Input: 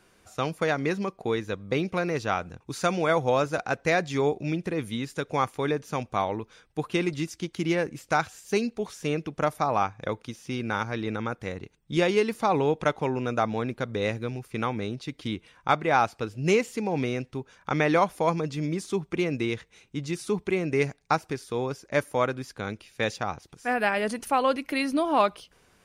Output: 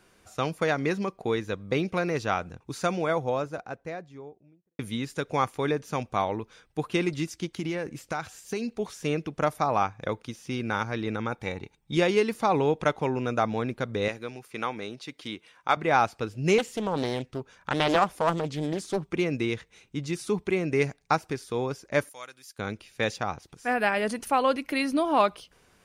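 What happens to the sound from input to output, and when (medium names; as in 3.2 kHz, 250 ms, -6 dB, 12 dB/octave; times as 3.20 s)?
2.27–4.79 s: studio fade out
7.45–8.78 s: compression, threshold -26 dBFS
11.31–11.95 s: small resonant body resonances 850/2300/3700 Hz, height 13 dB
14.08–15.77 s: high-pass 490 Hz 6 dB/octave
16.58–19.05 s: loudspeaker Doppler distortion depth 0.61 ms
22.09–22.59 s: pre-emphasis filter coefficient 0.97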